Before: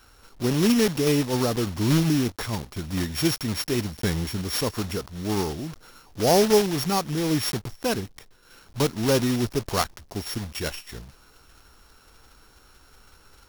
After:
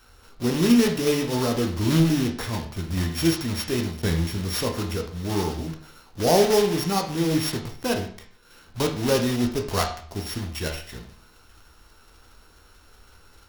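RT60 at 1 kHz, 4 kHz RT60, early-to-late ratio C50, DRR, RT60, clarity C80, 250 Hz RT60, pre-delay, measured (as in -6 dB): 0.50 s, 0.45 s, 8.5 dB, 2.0 dB, 0.50 s, 12.5 dB, 0.55 s, 12 ms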